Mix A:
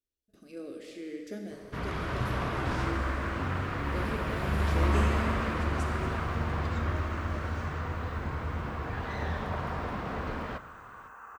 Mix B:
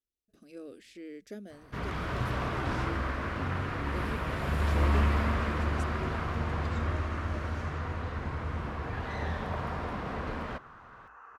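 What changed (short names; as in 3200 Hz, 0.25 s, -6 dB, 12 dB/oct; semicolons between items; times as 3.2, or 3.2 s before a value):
second sound: add LPF 5300 Hz 24 dB/oct; reverb: off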